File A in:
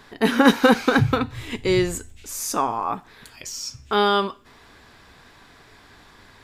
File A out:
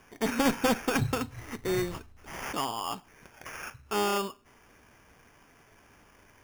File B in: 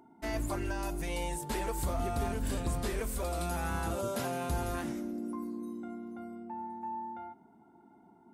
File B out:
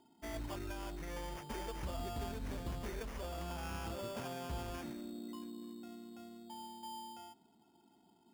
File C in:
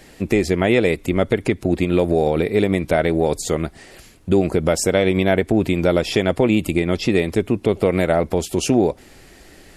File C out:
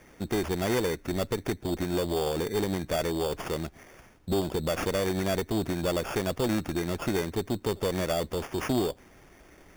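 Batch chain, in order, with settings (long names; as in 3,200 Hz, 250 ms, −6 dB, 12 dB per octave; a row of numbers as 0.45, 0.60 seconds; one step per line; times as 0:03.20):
asymmetric clip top −17 dBFS
decimation without filtering 11×
level −8.5 dB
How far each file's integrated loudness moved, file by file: −9.5, −8.5, −11.0 LU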